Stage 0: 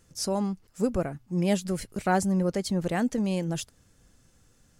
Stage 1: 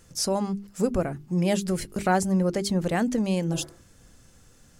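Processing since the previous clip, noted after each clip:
healed spectral selection 0:03.55–0:03.83, 220–2,400 Hz both
mains-hum notches 50/100/150/200/250/300/350/400 Hz
in parallel at +1.5 dB: downward compressor, threshold −34 dBFS, peak gain reduction 14.5 dB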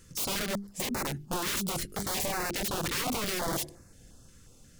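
wrap-around overflow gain 25.5 dB
notch on a step sequencer 5.6 Hz 730–3,200 Hz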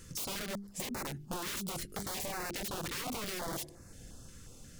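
downward compressor 2.5 to 1, threshold −45 dBFS, peak gain reduction 11 dB
level +3.5 dB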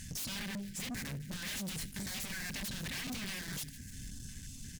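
echo with shifted repeats 151 ms, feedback 61%, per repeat −47 Hz, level −22 dB
brick-wall band-stop 280–1,500 Hz
tube saturation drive 45 dB, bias 0.3
level +8 dB

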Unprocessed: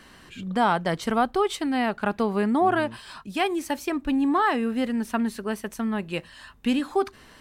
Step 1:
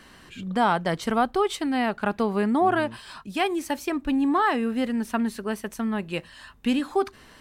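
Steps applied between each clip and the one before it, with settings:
no processing that can be heard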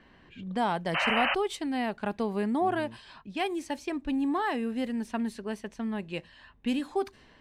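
parametric band 1,300 Hz −7 dB 0.43 octaves
low-pass that shuts in the quiet parts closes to 2,300 Hz, open at −21 dBFS
sound drawn into the spectrogram noise, 0:00.94–0:01.35, 520–3,100 Hz −22 dBFS
level −5.5 dB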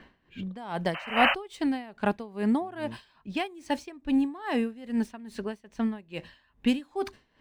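running median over 3 samples
tremolo with a sine in dB 2.4 Hz, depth 21 dB
level +6.5 dB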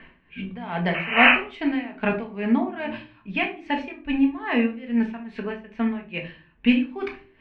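low-pass with resonance 2,400 Hz, resonance Q 3.1
rectangular room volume 240 cubic metres, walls furnished, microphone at 1.6 metres

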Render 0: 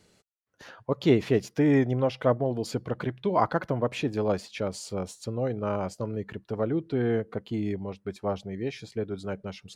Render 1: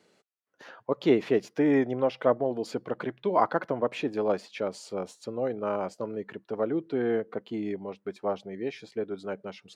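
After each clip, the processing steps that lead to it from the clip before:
high-pass filter 260 Hz 12 dB per octave
high-shelf EQ 4,400 Hz −10.5 dB
level +1 dB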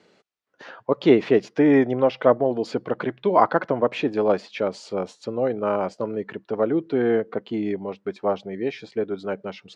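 low-pass filter 5,300 Hz 12 dB per octave
level +6.5 dB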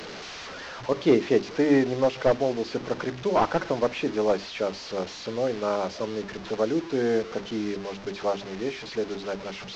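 linear delta modulator 32 kbit/s, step −29.5 dBFS
mains-hum notches 50/100/150/200/250/300/350/400 Hz
level −3 dB

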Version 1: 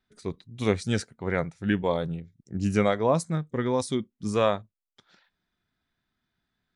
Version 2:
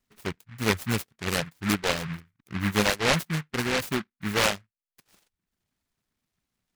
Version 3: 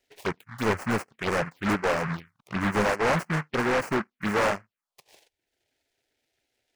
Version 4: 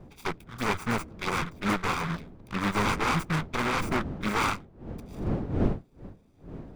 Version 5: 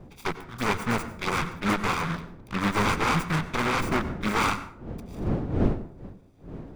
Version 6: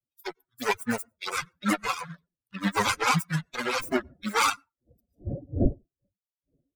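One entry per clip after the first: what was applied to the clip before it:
reverb reduction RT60 0.69 s; short delay modulated by noise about 1,600 Hz, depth 0.31 ms
dynamic equaliser 7,500 Hz, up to −5 dB, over −43 dBFS, Q 0.76; phaser swept by the level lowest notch 190 Hz, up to 3,600 Hz, full sweep at −27.5 dBFS; mid-hump overdrive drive 25 dB, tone 1,700 Hz, clips at −11 dBFS; level −3 dB
lower of the sound and its delayed copy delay 0.83 ms; wind on the microphone 260 Hz −36 dBFS
dense smooth reverb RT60 0.58 s, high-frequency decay 0.6×, pre-delay 80 ms, DRR 13 dB; level +2 dB
spectral dynamics exaggerated over time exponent 3; bass and treble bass −3 dB, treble +6 dB; level +7 dB

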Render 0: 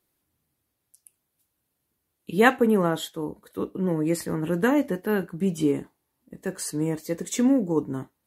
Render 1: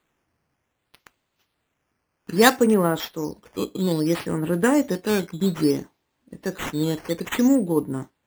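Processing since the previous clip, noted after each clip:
sample-and-hold swept by an LFO 8×, swing 100% 0.61 Hz
level +2.5 dB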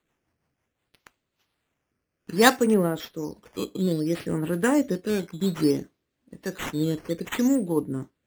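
rotating-speaker cabinet horn 6 Hz, later 1 Hz, at 0:00.54
level −1 dB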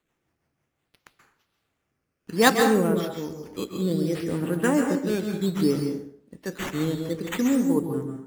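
dense smooth reverb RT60 0.61 s, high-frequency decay 0.7×, pre-delay 120 ms, DRR 3.5 dB
level −1 dB

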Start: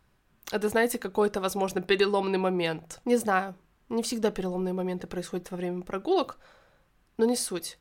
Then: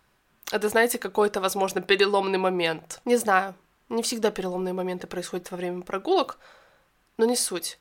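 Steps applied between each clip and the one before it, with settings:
low-shelf EQ 260 Hz −10.5 dB
level +5.5 dB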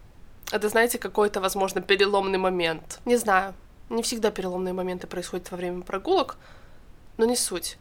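background noise brown −47 dBFS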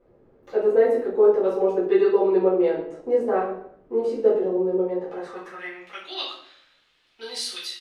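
band-pass filter sweep 430 Hz → 3,400 Hz, 0:04.82–0:05.98
repeating echo 121 ms, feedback 32%, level −19 dB
rectangular room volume 80 cubic metres, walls mixed, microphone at 2 metres
level −2 dB

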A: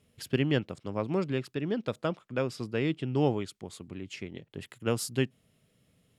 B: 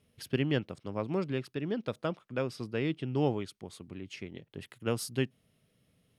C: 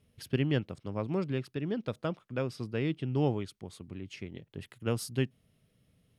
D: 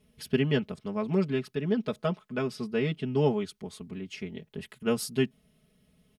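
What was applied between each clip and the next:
notch filter 7,300 Hz, Q 6.7; level −2.5 dB
low-shelf EQ 130 Hz +8.5 dB; level −1.5 dB
comb filter 4.7 ms, depth 98%; level +1.5 dB

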